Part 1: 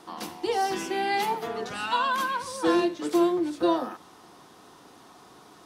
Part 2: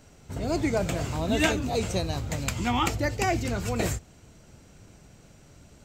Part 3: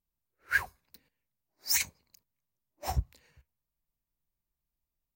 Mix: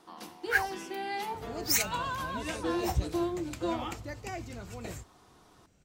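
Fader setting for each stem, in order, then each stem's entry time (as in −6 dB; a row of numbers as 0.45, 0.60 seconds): −9.0, −13.5, +0.5 decibels; 0.00, 1.05, 0.00 seconds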